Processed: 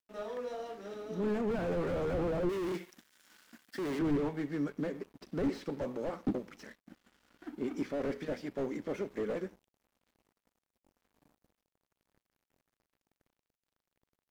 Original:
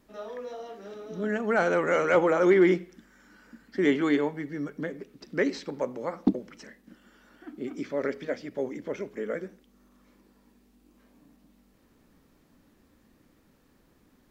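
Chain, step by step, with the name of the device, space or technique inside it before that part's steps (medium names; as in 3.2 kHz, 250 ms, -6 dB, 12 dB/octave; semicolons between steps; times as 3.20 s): early transistor amplifier (crossover distortion -56 dBFS; slew-rate limiter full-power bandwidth 13 Hz); 2.49–3.99 s: tilt EQ +3 dB/octave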